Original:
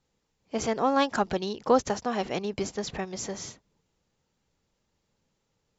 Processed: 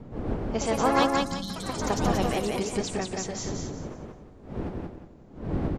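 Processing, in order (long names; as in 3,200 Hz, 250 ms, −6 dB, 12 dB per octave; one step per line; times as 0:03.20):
wind on the microphone 290 Hz −36 dBFS
time-frequency box erased 0:01.07–0:01.90, 210–3,000 Hz
delay with pitch and tempo change per echo 182 ms, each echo +4 semitones, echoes 3, each echo −6 dB
on a send: repeating echo 178 ms, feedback 30%, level −3 dB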